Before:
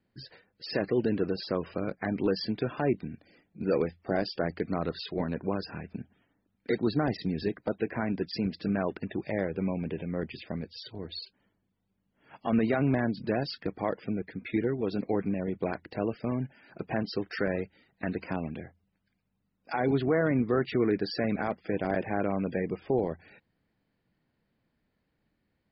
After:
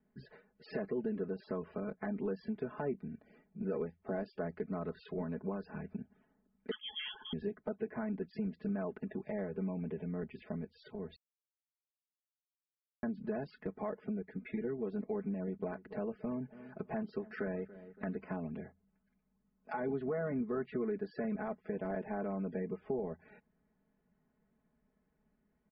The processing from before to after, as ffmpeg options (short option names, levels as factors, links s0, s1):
-filter_complex "[0:a]asettb=1/sr,asplit=3[s0][s1][s2];[s0]atrim=end=6.714[s3];[s1]atrim=start=6.71:end=7.33,asetpts=PTS-STARTPTS,afade=t=in:d=0.004:c=qsin,afade=t=out:st=0.616:d=0.004:c=qsin,lowpass=f=3000:t=q:w=0.5098,lowpass=f=3000:t=q:w=0.6013,lowpass=f=3000:t=q:w=0.9,lowpass=f=3000:t=q:w=2.563,afreqshift=-3500[s4];[s2]atrim=start=7.326[s5];[s3][s4]acrossfade=d=0.004:c1=hsin:c2=qsin[s6];[s6][s5]acrossfade=d=0.004:c1=qsin:c2=hsin,asettb=1/sr,asplit=3[s7][s8][s9];[s7]atrim=end=15.314[s10];[s8]atrim=start=15.31:end=18.49,asetpts=PTS-STARTPTS,afade=t=in:d=0.004:c=qsin,afade=t=out:st=3.176:d=0.004:c=qsin,asplit=2[s11][s12];[s12]adelay=282,lowpass=f=2000:p=1,volume=0.0891,asplit=2[s13][s14];[s14]adelay=282,lowpass=f=2000:p=1,volume=0.37,asplit=2[s15][s16];[s16]adelay=282,lowpass=f=2000:p=1,volume=0.37[s17];[s11][s13][s15][s17]amix=inputs=4:normalize=0,atrim=end_sample=140238[s18];[s9]atrim=start=18.486[s19];[s10][s18]acrossfade=d=0.004:c1=hsin:c2=qsin[s20];[s20][s19]acrossfade=d=0.004:c1=qsin:c2=hsin,asplit=3[s21][s22][s23];[s21]atrim=end=11.16,asetpts=PTS-STARTPTS,afade=t=out:st=11.156:d=0.004:c=hsin[s24];[s22]atrim=start=11.16:end=13.03,asetpts=PTS-STARTPTS,volume=0[s25];[s23]atrim=start=13.03,asetpts=PTS-STARTPTS,afade=t=in:d=0.004:c=hsin[s26];[s24][s25][s26]concat=n=3:v=0:a=1,lowpass=1500,aecho=1:1:4.7:0.98,acompressor=threshold=0.0126:ratio=2,volume=0.708"